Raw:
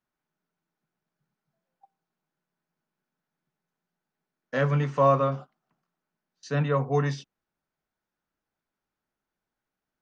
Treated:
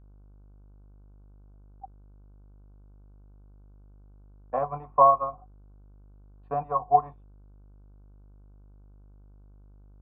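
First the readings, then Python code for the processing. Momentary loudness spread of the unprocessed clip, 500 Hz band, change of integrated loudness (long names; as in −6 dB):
11 LU, −2.0 dB, +1.0 dB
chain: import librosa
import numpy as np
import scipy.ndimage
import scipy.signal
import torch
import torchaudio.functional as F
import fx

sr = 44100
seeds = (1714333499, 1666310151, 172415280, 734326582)

y = fx.transient(x, sr, attack_db=11, sustain_db=-9)
y = fx.formant_cascade(y, sr, vowel='a')
y = fx.dmg_buzz(y, sr, base_hz=50.0, harmonics=31, level_db=-61.0, tilt_db=-9, odd_only=False)
y = y * librosa.db_to_amplitude(8.5)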